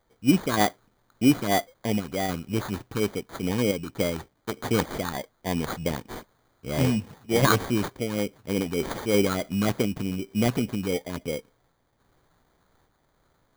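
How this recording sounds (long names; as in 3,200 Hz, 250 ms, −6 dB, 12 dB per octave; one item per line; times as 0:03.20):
a quantiser's noise floor 12 bits, dither triangular
sample-and-hold tremolo
phaser sweep stages 6, 3.3 Hz, lowest notch 650–3,400 Hz
aliases and images of a low sample rate 2,700 Hz, jitter 0%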